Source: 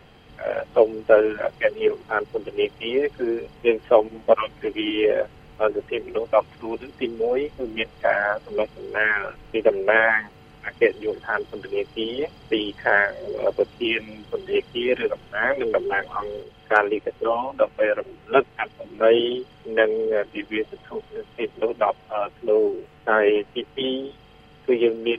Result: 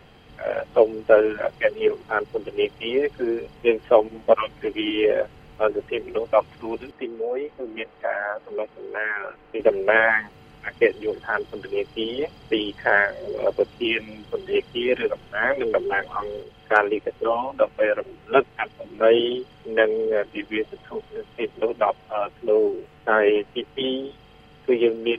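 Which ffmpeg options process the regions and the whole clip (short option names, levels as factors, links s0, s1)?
-filter_complex "[0:a]asettb=1/sr,asplit=3[s0][s1][s2];[s0]atrim=end=6.914[s3];[s1]atrim=start=6.91:end=9.6,asetpts=PTS-STARTPTS,afade=t=in:d=0.004:c=qsin,afade=t=out:st=2.686:d=0.004:c=qsin,acrossover=split=250 2600:gain=0.224 1 0.178[s4][s5][s6];[s4][s5][s6]amix=inputs=3:normalize=0,acompressor=threshold=0.0355:ratio=1.5:attack=3.2:release=140:knee=1:detection=peak[s7];[s2]atrim=start=9.596[s8];[s3][s7]acrossfade=d=0.004:c1=hsin:c2=qsin[s9];[s9][s8]acrossfade=d=0.004:c1=qsin:c2=hsin"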